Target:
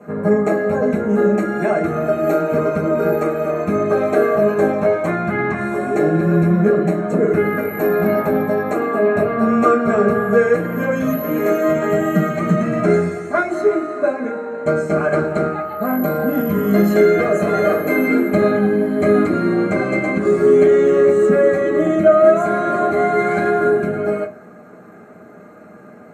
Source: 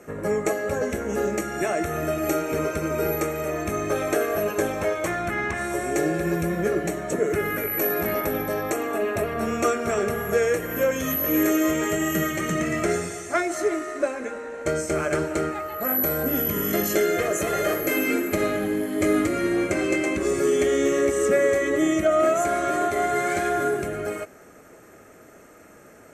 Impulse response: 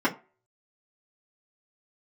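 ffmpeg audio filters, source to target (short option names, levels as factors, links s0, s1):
-filter_complex "[1:a]atrim=start_sample=2205,asetrate=32634,aresample=44100[s0];[0:a][s0]afir=irnorm=-1:irlink=0,volume=0.316"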